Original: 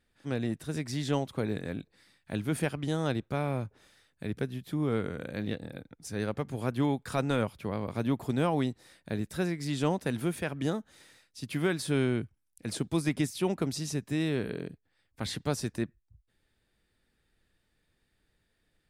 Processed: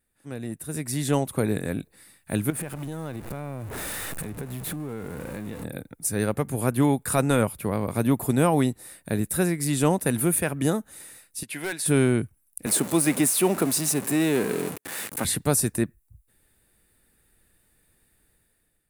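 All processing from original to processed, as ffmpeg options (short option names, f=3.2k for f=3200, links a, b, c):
-filter_complex "[0:a]asettb=1/sr,asplit=3[a][b][c];[a]atrim=end=2.504[d];[b]atrim=start=2.5:end=5.64,asetpts=PTS-STARTPTS,afade=t=in:d=0.004:c=qsin,afade=t=out:st=3.136:d=0.004:c=qsin,aeval=exprs='val(0)+0.5*0.02*sgn(val(0))':c=same,lowpass=f=3.1k:p=1,acompressor=threshold=-40dB:ratio=4:attack=3.2:release=140:knee=1:detection=peak[e];[c]atrim=start=5.636[f];[d][e]acrossfade=d=0.004:c1=hsin:c2=qsin[g];[g][f]acrossfade=d=0.004:c1=qsin:c2=hsin,asettb=1/sr,asplit=3[h][i][j];[h]atrim=end=11.434[k];[i]atrim=start=11.43:end=11.86,asetpts=PTS-STARTPTS,afade=t=in:d=0.004:c=qsin,afade=t=out:st=0.426:d=0.004:c=qsin,bandpass=f=2.1k:t=q:w=0.52,equalizer=f=1.2k:w=6.3:g=-13.5,asoftclip=type=hard:threshold=-31dB[l];[j]atrim=start=11.856[m];[k][l]acrossfade=d=0.004:c1=hsin:c2=qsin[n];[n][m]acrossfade=d=0.004:c1=qsin:c2=hsin,asettb=1/sr,asplit=3[o][p][q];[o]atrim=end=12.664[r];[p]atrim=start=12.66:end=15.25,asetpts=PTS-STARTPTS,afade=t=in:d=0.004:c=qsin,afade=t=out:st=2.586:d=0.004:c=qsin,aeval=exprs='val(0)+0.5*0.02*sgn(val(0))':c=same,highpass=220,highshelf=f=10k:g=-11[s];[q]atrim=start=15.246[t];[r][s]acrossfade=d=0.004:c1=hsin:c2=qsin[u];[u][t]acrossfade=d=0.004:c1=qsin:c2=hsin,highshelf=f=7.4k:t=q:w=1.5:g=13,bandreject=f=3.2k:w=15,dynaudnorm=f=340:g=5:m=11.5dB,volume=-4dB"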